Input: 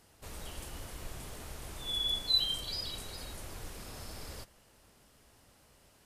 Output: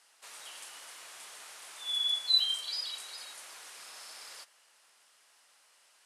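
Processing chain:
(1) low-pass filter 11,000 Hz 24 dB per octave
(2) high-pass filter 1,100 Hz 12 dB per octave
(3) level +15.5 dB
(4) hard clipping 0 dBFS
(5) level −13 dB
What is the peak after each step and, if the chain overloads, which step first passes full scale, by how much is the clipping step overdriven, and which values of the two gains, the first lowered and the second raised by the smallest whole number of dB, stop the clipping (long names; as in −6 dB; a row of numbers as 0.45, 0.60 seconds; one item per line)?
−18.0, −18.5, −3.0, −3.0, −16.0 dBFS
no step passes full scale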